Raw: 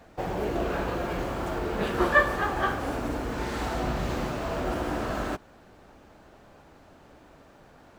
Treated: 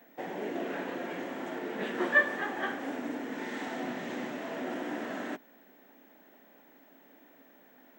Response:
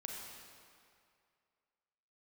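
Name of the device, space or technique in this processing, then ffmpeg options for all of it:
old television with a line whistle: -af "highpass=f=200:w=0.5412,highpass=f=200:w=1.3066,equalizer=f=260:t=q:w=4:g=7,equalizer=f=1.2k:t=q:w=4:g=-6,equalizer=f=1.9k:t=q:w=4:g=9,equalizer=f=3.3k:t=q:w=4:g=3,equalizer=f=4.6k:t=q:w=4:g=-7,lowpass=f=8.2k:w=0.5412,lowpass=f=8.2k:w=1.3066,aeval=exprs='val(0)+0.002*sin(2*PI*15734*n/s)':c=same,volume=-7dB"

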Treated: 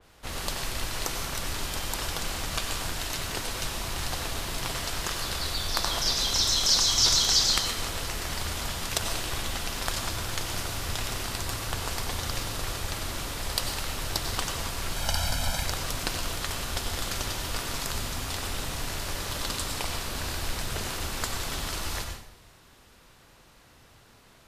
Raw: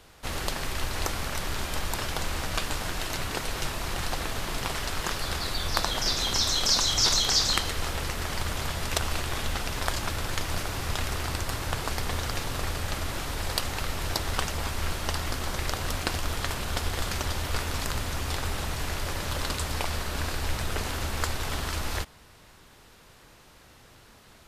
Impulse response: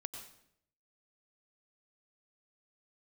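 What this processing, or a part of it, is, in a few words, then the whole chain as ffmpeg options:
bathroom: -filter_complex "[0:a]asettb=1/sr,asplit=3[a][b][c];[a]atrim=end=14.964[d];[b]atrim=start=14.96:end=15.64,asetpts=PTS-STARTPTS,afade=t=in:d=0.004:c=qsin,afade=t=out:st=0.676:d=0.004:c=qsin,aecho=1:1:1.3:0.98,atrim=end_sample=29988[e];[c]atrim=start=15.636[f];[d][e]acrossfade=d=0.004:c1=hsin:c2=qsin[g];[g][f]acrossfade=d=0.004:c1=qsin:c2=hsin[h];[1:a]atrim=start_sample=2205[i];[h][i]afir=irnorm=-1:irlink=0,adynamicequalizer=threshold=0.00708:dfrequency=3000:dqfactor=0.7:tfrequency=3000:tqfactor=0.7:attack=5:release=100:ratio=0.375:range=2.5:mode=boostabove:tftype=highshelf"

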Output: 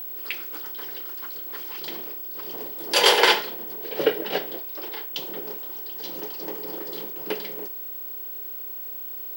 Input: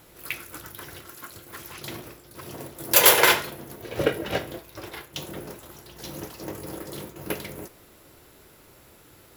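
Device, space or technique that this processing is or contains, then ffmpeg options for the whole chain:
old television with a line whistle: -af "highpass=f=180:w=0.5412,highpass=f=180:w=1.3066,equalizer=f=430:t=q:w=4:g=8,equalizer=f=850:t=q:w=4:g=7,equalizer=f=1.8k:t=q:w=4:g=3,equalizer=f=3.1k:t=q:w=4:g=8,equalizer=f=4.7k:t=q:w=4:g=9,equalizer=f=6.8k:t=q:w=4:g=-5,lowpass=f=9k:w=0.5412,lowpass=f=9k:w=1.3066,aeval=exprs='val(0)+0.0355*sin(2*PI*15734*n/s)':c=same,volume=-3dB"

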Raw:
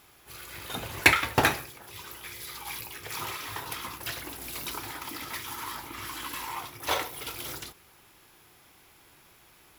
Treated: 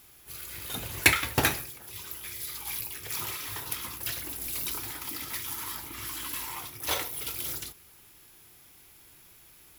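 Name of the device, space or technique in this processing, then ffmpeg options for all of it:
smiley-face EQ: -af "lowshelf=f=89:g=5,equalizer=f=890:t=o:w=1.8:g=-4.5,highshelf=f=7k:g=9,volume=-1.5dB"

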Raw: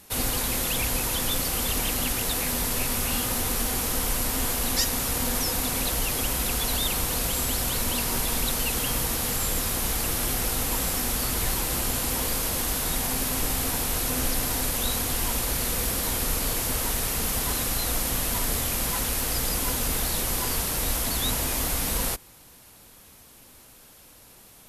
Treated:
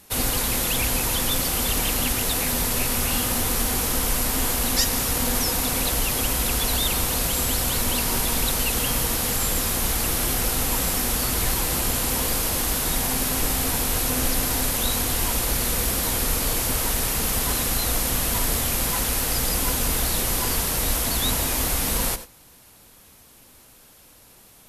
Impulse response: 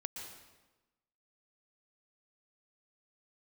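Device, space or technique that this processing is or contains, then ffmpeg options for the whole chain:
keyed gated reverb: -filter_complex "[0:a]asplit=3[a][b][c];[1:a]atrim=start_sample=2205[d];[b][d]afir=irnorm=-1:irlink=0[e];[c]apad=whole_len=1088455[f];[e][f]sidechaingate=range=-33dB:threshold=-38dB:ratio=16:detection=peak,volume=-4.5dB[g];[a][g]amix=inputs=2:normalize=0"

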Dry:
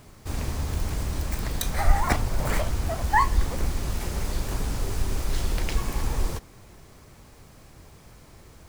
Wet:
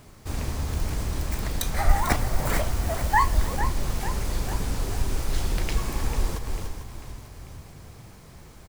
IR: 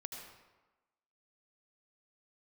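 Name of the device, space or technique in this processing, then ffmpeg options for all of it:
ducked delay: -filter_complex "[0:a]asplit=3[a][b][c];[b]adelay=294,volume=-5dB[d];[c]apad=whole_len=395772[e];[d][e]sidechaincompress=threshold=-41dB:ratio=8:attack=16:release=123[f];[a][f]amix=inputs=2:normalize=0,asettb=1/sr,asplit=3[g][h][i];[g]atrim=end=1.894[j];[h]atrim=start=1.89:end=3.57,asetpts=PTS-STARTPTS,afade=t=in:d=0.004:c=qsin,afade=t=out:st=1.676:d=0.004:c=qsin,highshelf=f=10k:g=5.5[k];[i]atrim=start=3.566[l];[j][k]acrossfade=d=0.004:c1=hsin:c2=qsin[m];[m][l]acrossfade=d=0.004:c1=qsin:c2=hsin,asplit=7[n][o][p][q][r][s][t];[o]adelay=445,afreqshift=-35,volume=-10.5dB[u];[p]adelay=890,afreqshift=-70,volume=-16dB[v];[q]adelay=1335,afreqshift=-105,volume=-21.5dB[w];[r]adelay=1780,afreqshift=-140,volume=-27dB[x];[s]adelay=2225,afreqshift=-175,volume=-32.6dB[y];[t]adelay=2670,afreqshift=-210,volume=-38.1dB[z];[n][u][v][w][x][y][z]amix=inputs=7:normalize=0"

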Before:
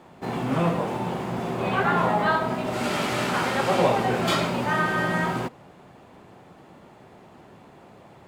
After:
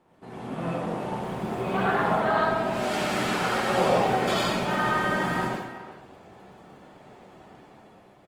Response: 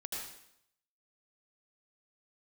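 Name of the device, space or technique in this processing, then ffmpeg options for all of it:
speakerphone in a meeting room: -filter_complex "[0:a]asplit=3[a][b][c];[a]afade=t=out:st=2.1:d=0.02[d];[b]highshelf=f=8.7k:g=-6,afade=t=in:st=2.1:d=0.02,afade=t=out:st=2.6:d=0.02[e];[c]afade=t=in:st=2.6:d=0.02[f];[d][e][f]amix=inputs=3:normalize=0[g];[1:a]atrim=start_sample=2205[h];[g][h]afir=irnorm=-1:irlink=0,asplit=2[i][j];[j]adelay=370,highpass=300,lowpass=3.4k,asoftclip=type=hard:threshold=-18dB,volume=-13dB[k];[i][k]amix=inputs=2:normalize=0,dynaudnorm=f=170:g=11:m=8dB,volume=-8dB" -ar 48000 -c:a libopus -b:a 24k

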